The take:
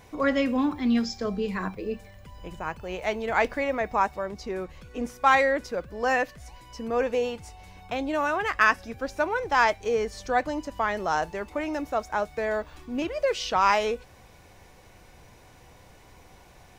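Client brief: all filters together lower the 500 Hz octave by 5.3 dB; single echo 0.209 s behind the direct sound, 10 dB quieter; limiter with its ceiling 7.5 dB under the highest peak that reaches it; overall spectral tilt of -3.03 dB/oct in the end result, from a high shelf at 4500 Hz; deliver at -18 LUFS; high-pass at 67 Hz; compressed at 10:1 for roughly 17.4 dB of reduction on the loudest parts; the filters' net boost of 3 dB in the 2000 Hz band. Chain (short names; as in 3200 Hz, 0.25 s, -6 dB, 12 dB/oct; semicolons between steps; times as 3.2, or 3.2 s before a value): HPF 67 Hz; bell 500 Hz -6.5 dB; bell 2000 Hz +5 dB; high shelf 4500 Hz -5 dB; compressor 10:1, threshold -31 dBFS; limiter -26.5 dBFS; echo 0.209 s -10 dB; gain +19.5 dB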